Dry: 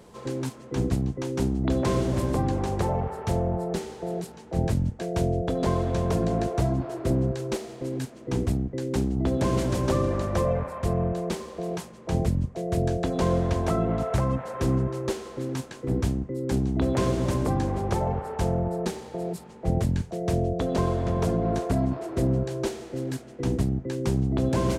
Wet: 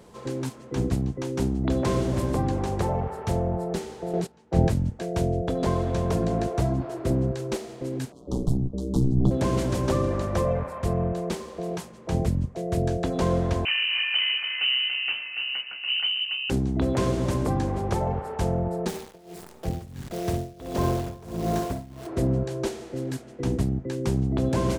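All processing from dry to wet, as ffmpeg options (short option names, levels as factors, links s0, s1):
-filter_complex "[0:a]asettb=1/sr,asplit=3[s0][s1][s2];[s0]atrim=end=4.134[s3];[s1]atrim=start=4.13:end=4.69,asetpts=PTS-STARTPTS,afade=t=in:d=0.004:c=qsin,afade=t=out:st=0.556:d=0.004:c=qsin,agate=range=0.141:threshold=0.0126:ratio=16:release=100:detection=peak,highshelf=f=10000:g=-11,acontrast=36[s4];[s2]atrim=start=4.686[s5];[s3][s4]acrossfade=d=0.004:c1=hsin:c2=qsin[s6];[s6][s5]acrossfade=d=0.004:c1=qsin:c2=hsin,asettb=1/sr,asplit=3[s7][s8][s9];[s7]atrim=end=8.124[s10];[s8]atrim=start=8.12:end=9.31,asetpts=PTS-STARTPTS,afade=t=in:d=0.004:c=qsin,afade=t=out:st=1.186:d=0.004:c=qsin,asubboost=boost=8.5:cutoff=250,aeval=exprs='val(0)*sin(2*PI*62*n/s)':c=same,asuperstop=centerf=2000:order=8:qfactor=0.91[s11];[s9]atrim=start=9.306[s12];[s10][s11]acrossfade=d=0.004:c1=hsin:c2=qsin[s13];[s13][s12]acrossfade=d=0.004:c1=qsin:c2=hsin,asettb=1/sr,asplit=3[s14][s15][s16];[s14]atrim=end=13.654[s17];[s15]atrim=start=13.65:end=16.5,asetpts=PTS-STARTPTS,afade=t=in:d=0.004:c=qsin,afade=t=out:st=2.846:d=0.004:c=qsin,aeval=exprs='clip(val(0),-1,0.0631)':c=same,aecho=1:1:285:0.447,atrim=end_sample=125685,lowpass=f=2600:t=q:w=0.5098,lowpass=f=2600:t=q:w=0.6013,lowpass=f=2600:t=q:w=0.9,lowpass=f=2600:t=q:w=2.563,afreqshift=-3100[s18];[s16]atrim=start=16.496[s19];[s17][s18]acrossfade=d=0.004:c1=hsin:c2=qsin[s20];[s20][s19]acrossfade=d=0.004:c1=qsin:c2=hsin,asettb=1/sr,asplit=3[s21][s22][s23];[s21]atrim=end=18.884[s24];[s22]atrim=start=18.88:end=22.07,asetpts=PTS-STARTPTS,afade=t=in:d=0.004:c=qsin,afade=t=out:st=3.186:d=0.004:c=qsin,aecho=1:1:60|120|180|240|300:0.473|0.194|0.0795|0.0326|0.0134,atrim=end_sample=140679,acrusher=bits=7:dc=4:mix=0:aa=0.000001,tremolo=f=1.5:d=0.92[s25];[s23]atrim=start=22.066[s26];[s24][s25]acrossfade=d=0.004:c1=hsin:c2=qsin[s27];[s27][s26]acrossfade=d=0.004:c1=qsin:c2=hsin"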